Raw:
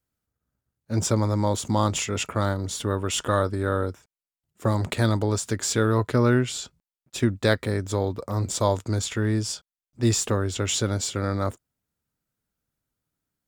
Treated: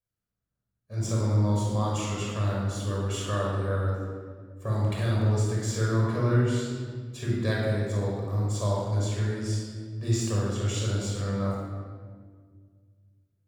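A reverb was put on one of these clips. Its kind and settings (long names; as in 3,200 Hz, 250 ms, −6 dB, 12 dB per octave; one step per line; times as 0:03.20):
rectangular room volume 2,500 cubic metres, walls mixed, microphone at 5.7 metres
level −15 dB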